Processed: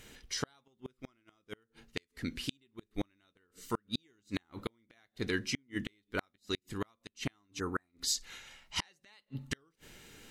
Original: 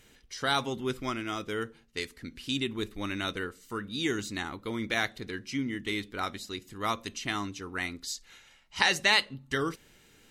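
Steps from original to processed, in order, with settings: flipped gate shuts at -24 dBFS, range -42 dB; spectral repair 7.62–7.88, 1900–6200 Hz after; gain +4.5 dB

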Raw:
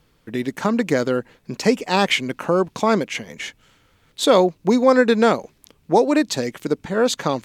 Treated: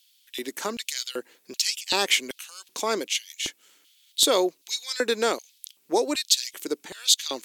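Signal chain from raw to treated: pre-emphasis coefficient 0.9; LFO high-pass square 1.3 Hz 340–3300 Hz; gain +6 dB

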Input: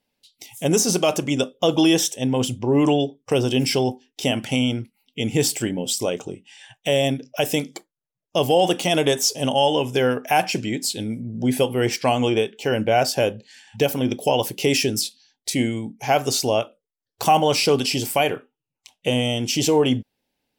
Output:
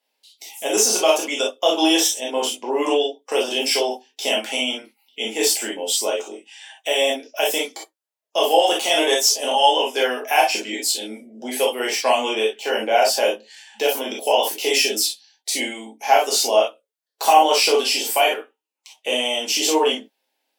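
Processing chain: Bessel high-pass 510 Hz, order 6; bell 890 Hz +2 dB; non-linear reverb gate 80 ms flat, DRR -3 dB; gain -1 dB

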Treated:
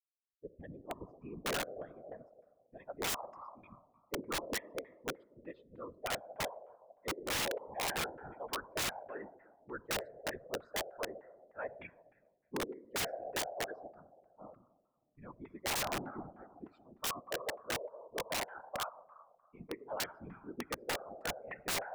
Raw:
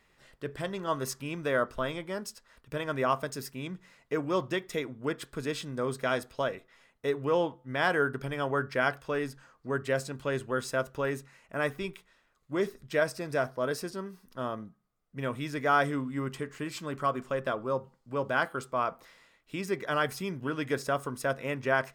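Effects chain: per-bin expansion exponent 3; high shelf 5600 Hz +7 dB; reverb RT60 1.7 s, pre-delay 6 ms, DRR 14.5 dB; soft clip -23 dBFS, distortion -19 dB; LFO low-pass saw down 3.3 Hz 450–2100 Hz; dynamic EQ 1200 Hz, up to -5 dB, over -46 dBFS, Q 1.1; band-pass sweep 360 Hz -> 840 Hz, 1.47–3.14; whisperiser; wrapped overs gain 40 dB; gain +10.5 dB

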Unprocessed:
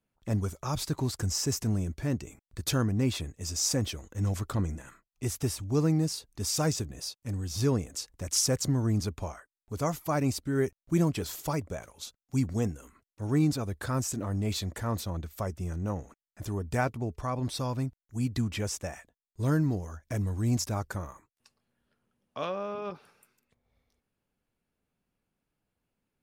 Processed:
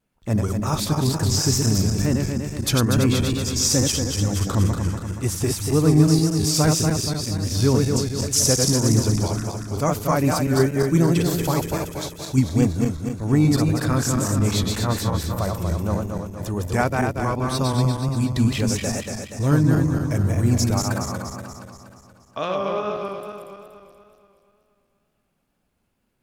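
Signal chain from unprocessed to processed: regenerating reverse delay 0.119 s, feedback 73%, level -3 dB; wow and flutter 47 cents; gain +7 dB

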